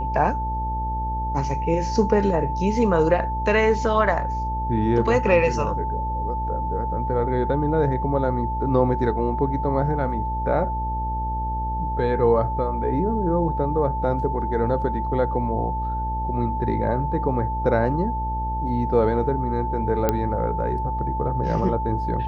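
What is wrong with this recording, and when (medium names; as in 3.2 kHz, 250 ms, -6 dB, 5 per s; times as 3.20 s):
buzz 60 Hz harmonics 14 -28 dBFS
whine 880 Hz -26 dBFS
20.09 s: pop -7 dBFS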